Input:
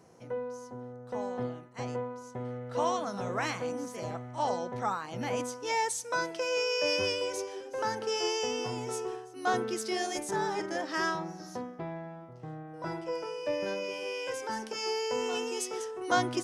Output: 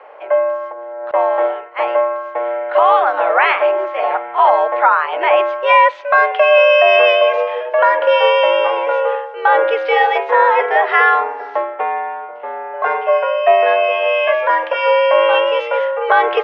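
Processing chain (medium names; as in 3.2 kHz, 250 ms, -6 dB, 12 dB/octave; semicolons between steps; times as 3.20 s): mistuned SSB +98 Hz 410–2800 Hz; 0.72–1.14 s: compressor with a negative ratio -51 dBFS, ratio -1; loudness maximiser +23 dB; trim -1 dB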